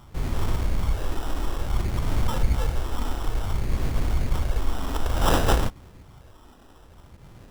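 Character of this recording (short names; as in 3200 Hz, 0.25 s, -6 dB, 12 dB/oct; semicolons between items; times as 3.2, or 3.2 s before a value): phasing stages 6, 0.57 Hz, lowest notch 120–1900 Hz; aliases and images of a low sample rate 2200 Hz, jitter 0%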